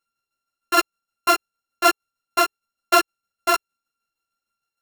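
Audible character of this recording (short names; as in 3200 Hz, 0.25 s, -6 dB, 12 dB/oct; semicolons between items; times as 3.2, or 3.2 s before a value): a buzz of ramps at a fixed pitch in blocks of 32 samples; tremolo saw down 6.5 Hz, depth 55%; a shimmering, thickened sound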